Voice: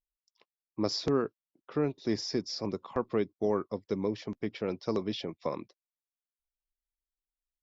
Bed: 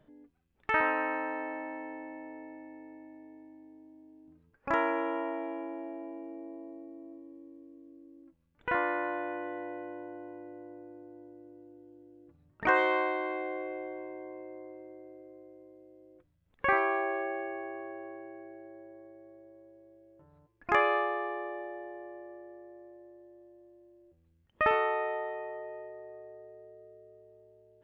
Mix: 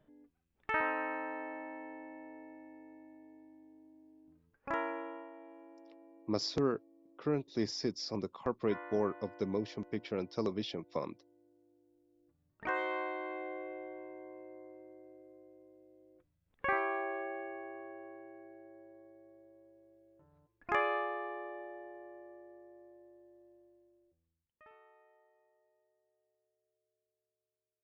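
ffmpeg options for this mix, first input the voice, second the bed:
-filter_complex "[0:a]adelay=5500,volume=-3.5dB[a];[1:a]volume=5dB,afade=t=out:st=4.57:d=0.73:silence=0.281838,afade=t=in:st=12.07:d=1.39:silence=0.298538,afade=t=out:st=23.52:d=1.08:silence=0.0398107[b];[a][b]amix=inputs=2:normalize=0"

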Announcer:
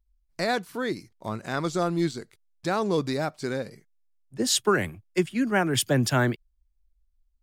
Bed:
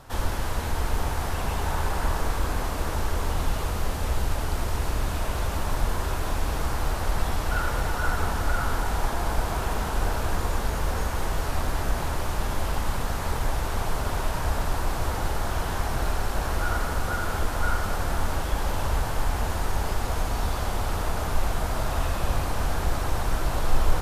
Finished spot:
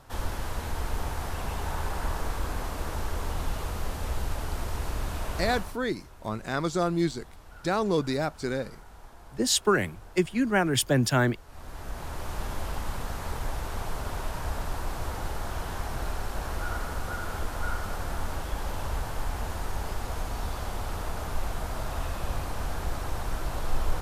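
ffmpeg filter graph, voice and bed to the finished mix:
-filter_complex "[0:a]adelay=5000,volume=-0.5dB[a];[1:a]volume=12dB,afade=t=out:st=5.52:d=0.24:silence=0.125893,afade=t=in:st=11.47:d=0.91:silence=0.141254[b];[a][b]amix=inputs=2:normalize=0"

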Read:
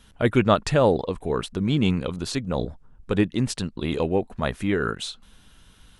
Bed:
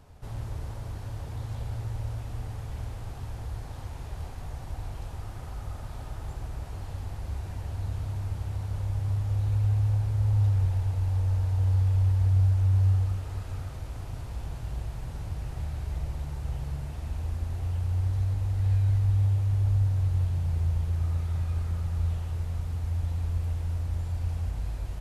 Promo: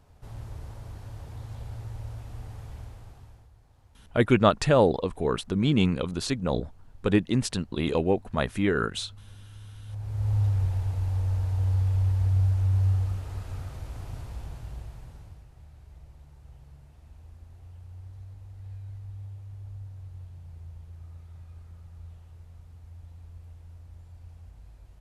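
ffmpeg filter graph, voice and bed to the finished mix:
-filter_complex "[0:a]adelay=3950,volume=-1dB[a];[1:a]volume=15.5dB,afade=t=out:st=2.66:d=0.84:silence=0.149624,afade=t=in:st=9.84:d=0.49:silence=0.1,afade=t=out:st=14.14:d=1.33:silence=0.158489[b];[a][b]amix=inputs=2:normalize=0"

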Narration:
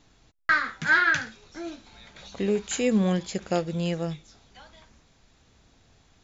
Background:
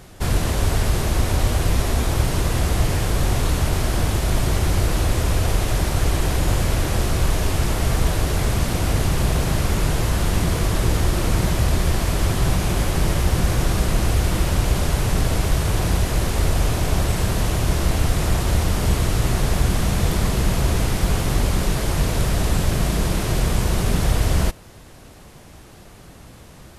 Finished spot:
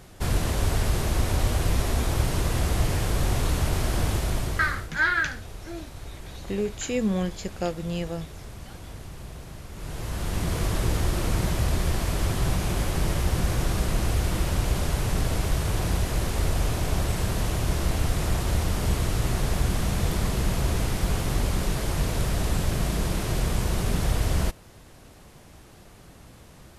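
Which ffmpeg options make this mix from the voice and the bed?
-filter_complex "[0:a]adelay=4100,volume=-2.5dB[a];[1:a]volume=10.5dB,afade=t=out:st=4.13:d=0.77:silence=0.158489,afade=t=in:st=9.72:d=0.91:silence=0.177828[b];[a][b]amix=inputs=2:normalize=0"

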